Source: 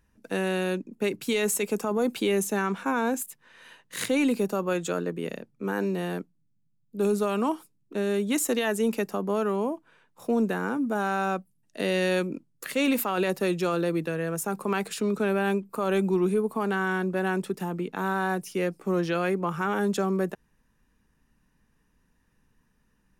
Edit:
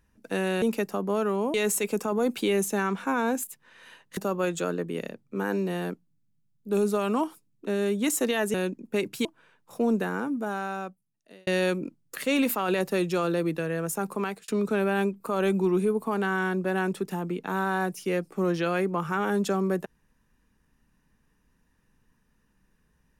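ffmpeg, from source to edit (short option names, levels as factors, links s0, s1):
-filter_complex "[0:a]asplit=8[s0][s1][s2][s3][s4][s5][s6][s7];[s0]atrim=end=0.622[s8];[s1]atrim=start=8.818:end=9.742[s9];[s2]atrim=start=1.328:end=3.962[s10];[s3]atrim=start=4.448:end=8.822[s11];[s4]atrim=start=0.618:end=1.332[s12];[s5]atrim=start=9.738:end=11.96,asetpts=PTS-STARTPTS,afade=t=out:st=0.742:d=1.48[s13];[s6]atrim=start=11.96:end=14.97,asetpts=PTS-STARTPTS,afade=t=in:d=0.004:c=hsin,afade=t=out:st=2.55:d=0.46:c=qsin[s14];[s7]atrim=start=14.97,asetpts=PTS-STARTPTS,afade=t=in:d=0.004:c=hsin[s15];[s8][s9]acrossfade=d=0.004:c1=hsin:c2=hsin[s16];[s16][s10]acrossfade=d=0.004:c1=hsin:c2=hsin[s17];[s17][s11]acrossfade=d=0.004:c1=hsin:c2=hsin[s18];[s18][s12]acrossfade=d=0.004:c1=hsin:c2=hsin[s19];[s13][s14][s15]concat=n=3:v=0:a=1[s20];[s19][s20]acrossfade=d=0.004:c1=hsin:c2=hsin"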